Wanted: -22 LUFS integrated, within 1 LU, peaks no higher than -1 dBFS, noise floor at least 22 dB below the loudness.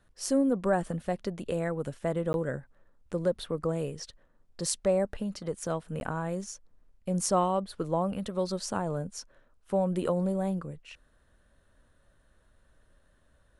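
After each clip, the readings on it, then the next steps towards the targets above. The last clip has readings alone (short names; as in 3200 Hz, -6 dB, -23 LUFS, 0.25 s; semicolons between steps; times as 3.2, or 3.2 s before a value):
dropouts 2; longest dropout 11 ms; loudness -31.0 LUFS; peak -11.5 dBFS; loudness target -22.0 LUFS
-> interpolate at 2.33/6, 11 ms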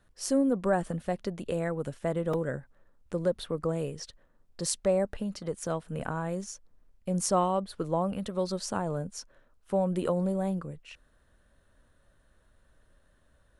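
dropouts 0; loudness -31.0 LUFS; peak -11.5 dBFS; loudness target -22.0 LUFS
-> gain +9 dB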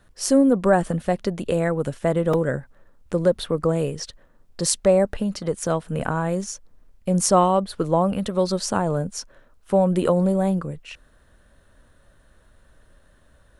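loudness -22.0 LUFS; peak -2.5 dBFS; noise floor -57 dBFS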